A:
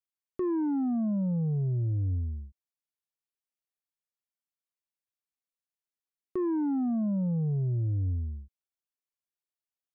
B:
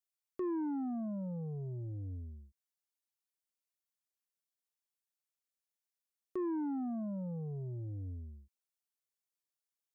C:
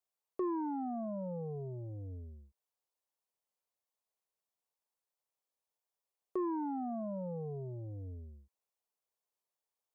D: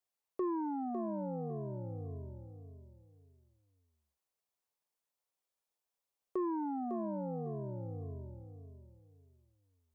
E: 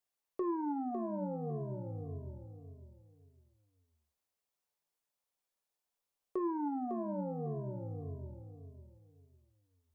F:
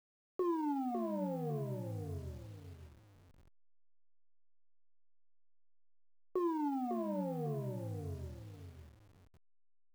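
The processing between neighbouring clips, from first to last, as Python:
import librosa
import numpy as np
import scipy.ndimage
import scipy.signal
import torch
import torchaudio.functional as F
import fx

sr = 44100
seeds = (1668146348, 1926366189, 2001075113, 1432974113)

y1 = fx.bass_treble(x, sr, bass_db=-9, treble_db=6)
y1 = y1 * librosa.db_to_amplitude(-4.5)
y2 = fx.band_shelf(y1, sr, hz=670.0, db=10.0, octaves=1.7)
y2 = y2 * librosa.db_to_amplitude(-2.5)
y3 = fx.echo_feedback(y2, sr, ms=553, feedback_pct=26, wet_db=-8.0)
y4 = fx.room_shoebox(y3, sr, seeds[0], volume_m3=120.0, walls='furnished', distance_m=0.35)
y5 = fx.delta_hold(y4, sr, step_db=-56.5)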